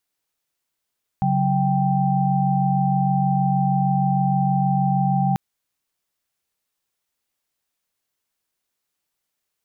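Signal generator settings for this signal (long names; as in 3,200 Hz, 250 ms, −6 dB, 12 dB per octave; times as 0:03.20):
held notes C#3/F#3/G5 sine, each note −21 dBFS 4.14 s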